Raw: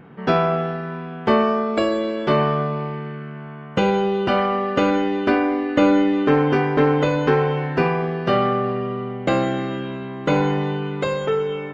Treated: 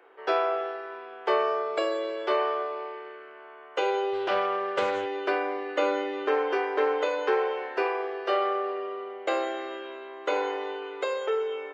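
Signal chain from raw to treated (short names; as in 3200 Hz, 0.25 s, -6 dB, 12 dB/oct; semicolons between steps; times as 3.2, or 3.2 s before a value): steep high-pass 360 Hz 48 dB/oct; 4.13–5.06 Doppler distortion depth 0.15 ms; gain -6 dB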